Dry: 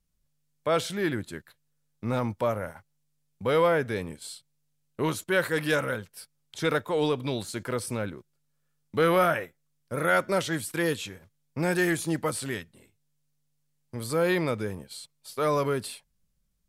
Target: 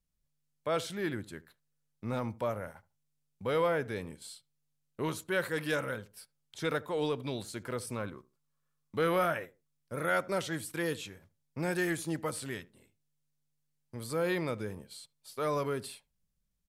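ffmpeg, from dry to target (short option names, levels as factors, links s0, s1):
-filter_complex "[0:a]asettb=1/sr,asplit=3[s0][s1][s2];[s0]atrim=end=7.964[s3];[s1]atrim=start=7.96:end=8.96,asetpts=PTS-STARTPTS,afade=t=in:d=0.004:c=qsin,afade=t=out:st=0.996:d=0.004:c=qsin,equalizer=f=1100:t=o:w=0.29:g=12[s4];[s2]atrim=start=8.956[s5];[s3][s4]acrossfade=d=0.004:c1=hsin:c2=qsin[s6];[s6][s5]acrossfade=d=0.004:c1=qsin:c2=hsin,asplit=2[s7][s8];[s8]adelay=75,lowpass=f=840:p=1,volume=0.126,asplit=2[s9][s10];[s10]adelay=75,lowpass=f=840:p=1,volume=0.25[s11];[s9][s11]amix=inputs=2:normalize=0[s12];[s7][s12]amix=inputs=2:normalize=0,volume=0.473"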